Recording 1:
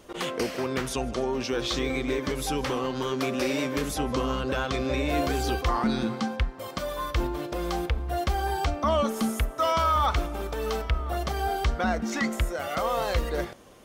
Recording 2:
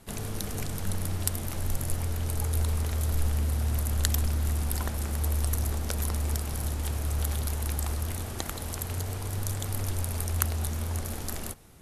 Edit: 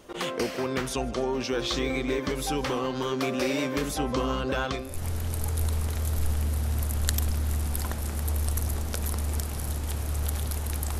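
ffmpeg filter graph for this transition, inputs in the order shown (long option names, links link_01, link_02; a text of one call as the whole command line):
ffmpeg -i cue0.wav -i cue1.wav -filter_complex "[0:a]apad=whole_dur=10.99,atrim=end=10.99,atrim=end=5.05,asetpts=PTS-STARTPTS[link_01];[1:a]atrim=start=1.65:end=7.95,asetpts=PTS-STARTPTS[link_02];[link_01][link_02]acrossfade=duration=0.36:curve1=qua:curve2=qua" out.wav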